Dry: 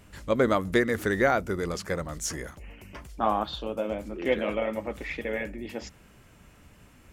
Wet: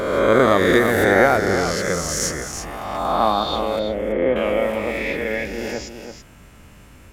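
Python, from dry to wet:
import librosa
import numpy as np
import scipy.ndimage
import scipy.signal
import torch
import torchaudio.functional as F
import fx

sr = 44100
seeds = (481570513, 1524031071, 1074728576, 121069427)

y = fx.spec_swells(x, sr, rise_s=1.71)
y = fx.bessel_lowpass(y, sr, hz=1100.0, order=2, at=(3.79, 4.36))
y = y + 10.0 ** (-8.0 / 20.0) * np.pad(y, (int(331 * sr / 1000.0), 0))[:len(y)]
y = y * 10.0 ** (4.5 / 20.0)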